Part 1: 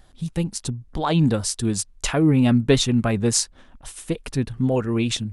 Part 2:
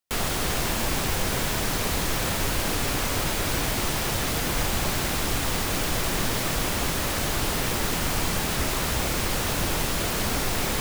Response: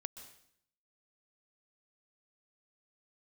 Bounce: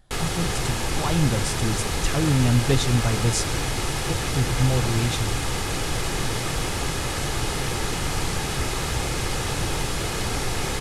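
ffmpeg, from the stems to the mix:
-filter_complex "[0:a]asubboost=boost=5.5:cutoff=87,volume=-9dB,asplit=2[a][b];[b]volume=-3.5dB[c];[1:a]lowpass=f=11k:w=0.5412,lowpass=f=11k:w=1.3066,aecho=1:1:2.4:0.33,volume=-1dB[d];[2:a]atrim=start_sample=2205[e];[c][e]afir=irnorm=-1:irlink=0[f];[a][d][f]amix=inputs=3:normalize=0,equalizer=f=130:t=o:w=0.8:g=6"

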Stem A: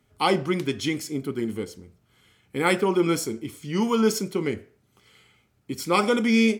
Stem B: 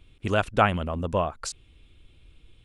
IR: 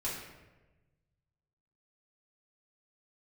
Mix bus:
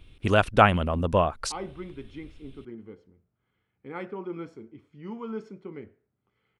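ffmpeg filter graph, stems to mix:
-filter_complex "[0:a]lowpass=1.8k,adelay=1300,volume=-14dB[a];[1:a]equalizer=f=7.2k:t=o:w=0.23:g=-7,volume=3dB[b];[a][b]amix=inputs=2:normalize=0"

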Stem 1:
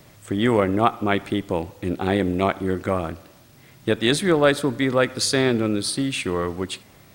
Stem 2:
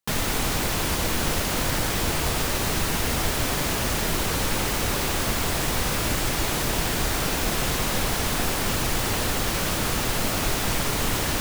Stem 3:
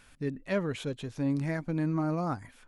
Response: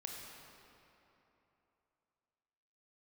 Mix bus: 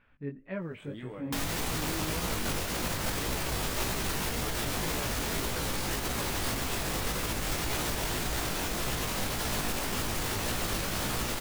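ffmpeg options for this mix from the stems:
-filter_complex "[0:a]acompressor=threshold=-20dB:ratio=6,adelay=550,volume=-14dB,asplit=2[a][b];[b]volume=-7.5dB[c];[1:a]aeval=exprs='clip(val(0),-1,0.0794)':c=same,adelay=1250,volume=0.5dB[d];[2:a]lowpass=f=2.7k:w=0.5412,lowpass=f=2.7k:w=1.3066,volume=-4dB,asplit=3[e][f][g];[f]volume=-18dB[h];[g]apad=whole_len=339231[i];[a][i]sidechaincompress=threshold=-43dB:ratio=8:attack=16:release=436[j];[3:a]atrim=start_sample=2205[k];[c][h]amix=inputs=2:normalize=0[l];[l][k]afir=irnorm=-1:irlink=0[m];[j][d][e][m]amix=inputs=4:normalize=0,flanger=delay=16:depth=5.5:speed=1.8,alimiter=limit=-22dB:level=0:latency=1:release=95"

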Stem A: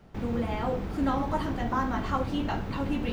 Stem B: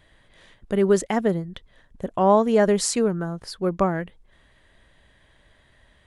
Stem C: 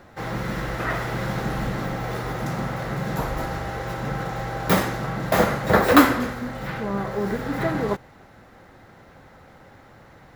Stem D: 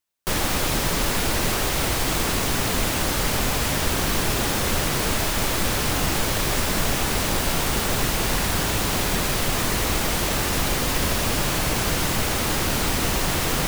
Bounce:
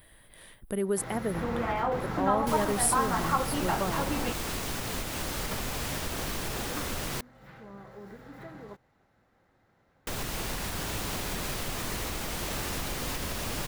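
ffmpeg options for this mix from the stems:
-filter_complex "[0:a]equalizer=f=1.1k:w=0.44:g=13.5,adelay=1200,volume=1.5dB[a];[1:a]aexciter=amount=14.9:drive=6.3:freq=9.6k,volume=-0.5dB,asplit=2[b][c];[2:a]adelay=800,volume=-2dB[d];[3:a]alimiter=limit=-13.5dB:level=0:latency=1:release=248,adelay=2200,volume=-1.5dB,asplit=3[e][f][g];[e]atrim=end=7.21,asetpts=PTS-STARTPTS,afade=t=out:st=7.206:d=0.004:c=hsin[h];[f]atrim=start=7.21:end=10.07,asetpts=PTS-STARTPTS,volume=0[i];[g]atrim=start=10.07,asetpts=PTS-STARTPTS,afade=t=in:d=0.004:c=hsin[j];[h][i][j]concat=n=3:v=0:a=1[k];[c]apad=whole_len=491841[l];[d][l]sidechaingate=range=-17dB:threshold=-53dB:ratio=16:detection=peak[m];[a][b][m][k]amix=inputs=4:normalize=0,acompressor=threshold=-44dB:ratio=1.5"

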